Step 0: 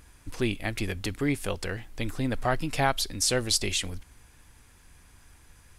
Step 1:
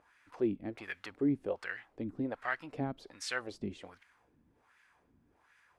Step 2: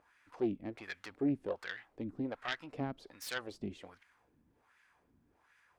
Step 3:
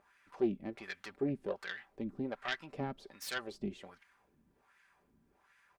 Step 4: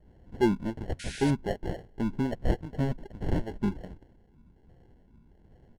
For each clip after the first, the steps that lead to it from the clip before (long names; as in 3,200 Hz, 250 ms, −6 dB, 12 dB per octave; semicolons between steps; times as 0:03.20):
LFO wah 1.3 Hz 220–1,900 Hz, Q 2.1
phase distortion by the signal itself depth 0.18 ms; level −2 dB
comb filter 5.1 ms, depth 45%
decimation without filtering 36×; sound drawn into the spectrogram noise, 0:00.99–0:01.31, 1,400–11,000 Hz −38 dBFS; RIAA equalisation playback; level +3.5 dB